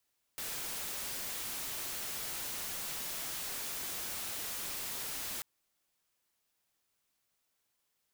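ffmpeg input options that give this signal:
-f lavfi -i "anoisesrc=c=white:a=0.0183:d=5.04:r=44100:seed=1"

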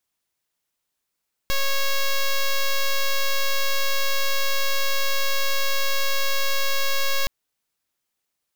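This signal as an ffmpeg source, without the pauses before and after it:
-f lavfi -i "aevalsrc='0.1*(2*lt(mod(550*t,1),0.06)-1)':d=5.77:s=44100"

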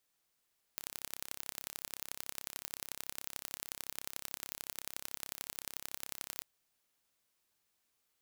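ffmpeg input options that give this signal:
-f lavfi -i "aevalsrc='0.266*eq(mod(n,1309),0)*(0.5+0.5*eq(mod(n,3927),0))':d=5.64:s=44100"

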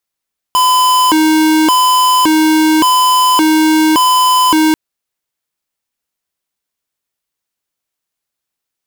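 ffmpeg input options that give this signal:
-f lavfi -i "aevalsrc='0.335*(2*lt(mod((661.5*t+348.5/0.88*(0.5-abs(mod(0.88*t,1)-0.5))),1),0.5)-1)':d=4.19:s=44100"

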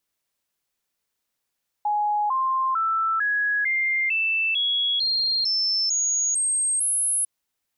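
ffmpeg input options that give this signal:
-f lavfi -i "aevalsrc='0.1*clip(min(mod(t,0.45),0.45-mod(t,0.45))/0.005,0,1)*sin(2*PI*835*pow(2,floor(t/0.45)/3)*mod(t,0.45))':d=5.4:s=44100"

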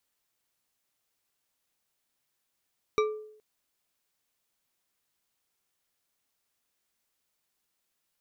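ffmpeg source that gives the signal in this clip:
-f lavfi -i "aevalsrc='0.0944*pow(10,-3*t/0.68)*sin(2*PI*429*t)+0.0562*pow(10,-3*t/0.334)*sin(2*PI*1182.8*t)+0.0335*pow(10,-3*t/0.209)*sin(2*PI*2318.3*t)+0.02*pow(10,-3*t/0.147)*sin(2*PI*3832.3*t)+0.0119*pow(10,-3*t/0.111)*sin(2*PI*5722.9*t)':d=0.42:s=44100"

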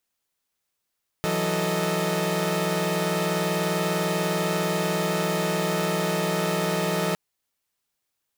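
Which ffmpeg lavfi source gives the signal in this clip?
-f lavfi -i "aevalsrc='0.0501*((2*mod(164.81*t,1)-1)+(2*mod(185*t,1)-1)+(2*mod(440*t,1)-1)+(2*mod(622.25*t,1)-1))':d=5.91:s=44100"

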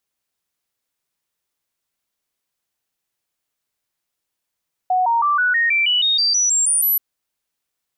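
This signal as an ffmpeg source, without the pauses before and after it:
-f lavfi -i "aevalsrc='0.2*clip(min(mod(t,0.16),0.16-mod(t,0.16))/0.005,0,1)*sin(2*PI*738*pow(2,floor(t/0.16)/3)*mod(t,0.16))':d=2.08:s=44100"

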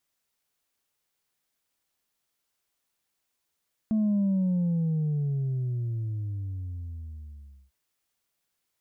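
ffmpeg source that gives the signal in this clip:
-f lavfi -i "aevalsrc='0.0794*clip((3.8-t)/3.52,0,1)*tanh(1.19*sin(2*PI*220*3.8/log(65/220)*(exp(log(65/220)*t/3.8)-1)))/tanh(1.19)':d=3.8:s=44100"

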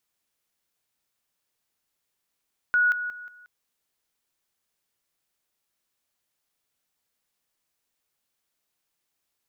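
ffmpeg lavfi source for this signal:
-f lavfi -i "aevalsrc='pow(10,(-17.5-10*floor(t/0.18))/20)*sin(2*PI*1460*t)':d=0.72:s=44100"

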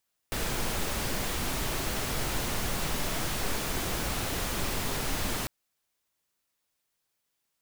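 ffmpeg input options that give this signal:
-f lavfi -i "anoisesrc=c=pink:a=0.153:d=5.15:r=44100:seed=1"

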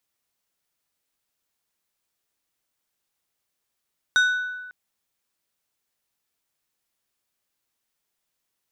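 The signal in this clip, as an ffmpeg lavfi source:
-f lavfi -i "aevalsrc='0.2*pow(10,-3*t/1.33)*sin(2*PI*1490*t)+0.0794*pow(10,-3*t/0.7)*sin(2*PI*3725*t)+0.0316*pow(10,-3*t/0.504)*sin(2*PI*5960*t)+0.0126*pow(10,-3*t/0.431)*sin(2*PI*7450*t)+0.00501*pow(10,-3*t/0.359)*sin(2*PI*9685*t)':d=0.55:s=44100"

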